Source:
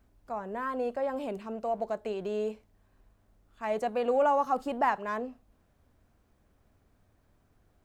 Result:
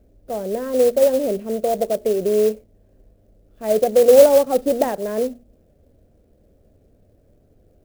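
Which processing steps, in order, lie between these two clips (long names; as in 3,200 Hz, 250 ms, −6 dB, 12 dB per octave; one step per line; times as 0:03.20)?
low shelf with overshoot 740 Hz +10.5 dB, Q 3
hum removal 119.3 Hz, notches 3
converter with an unsteady clock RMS 0.036 ms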